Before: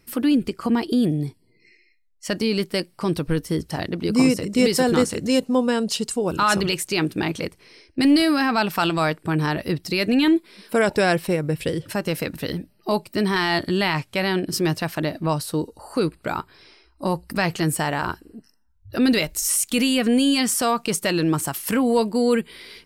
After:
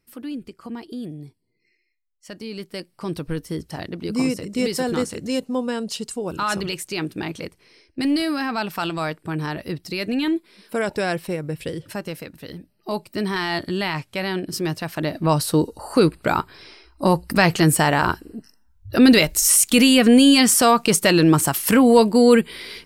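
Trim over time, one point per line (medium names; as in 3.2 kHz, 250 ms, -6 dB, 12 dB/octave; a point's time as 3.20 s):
2.37 s -12.5 dB
3.16 s -4.5 dB
11.99 s -4.5 dB
12.33 s -11 dB
13.05 s -3 dB
14.85 s -3 dB
15.43 s +6 dB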